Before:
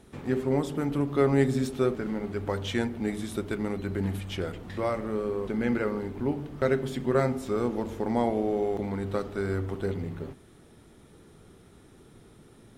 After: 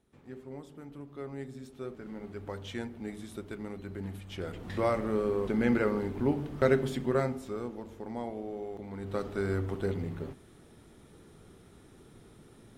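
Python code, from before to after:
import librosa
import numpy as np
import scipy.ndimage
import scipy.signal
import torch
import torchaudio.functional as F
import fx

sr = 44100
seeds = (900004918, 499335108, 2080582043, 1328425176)

y = fx.gain(x, sr, db=fx.line((1.62, -18.0), (2.23, -9.5), (4.25, -9.5), (4.71, 0.5), (6.81, 0.5), (7.78, -11.5), (8.85, -11.5), (9.26, -1.5)))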